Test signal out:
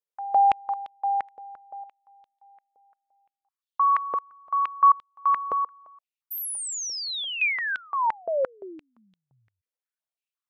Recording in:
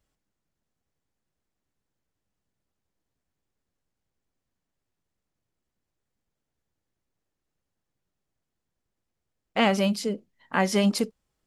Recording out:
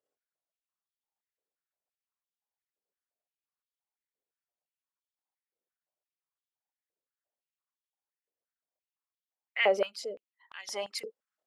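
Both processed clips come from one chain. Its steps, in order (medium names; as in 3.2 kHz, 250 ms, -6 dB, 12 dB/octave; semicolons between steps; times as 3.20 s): resonances exaggerated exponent 1.5; step-sequenced high-pass 5.8 Hz 480–3400 Hz; trim -7.5 dB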